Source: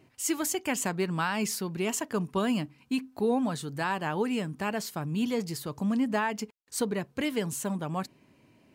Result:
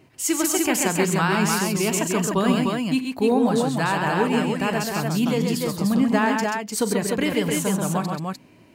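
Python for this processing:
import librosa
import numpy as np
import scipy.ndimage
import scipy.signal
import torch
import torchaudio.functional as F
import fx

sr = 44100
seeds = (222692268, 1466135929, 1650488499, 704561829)

y = fx.echo_multitap(x, sr, ms=(42, 97, 133, 295, 301), db=(-15.0, -13.0, -4.5, -17.0, -3.5))
y = F.gain(torch.from_numpy(y), 6.0).numpy()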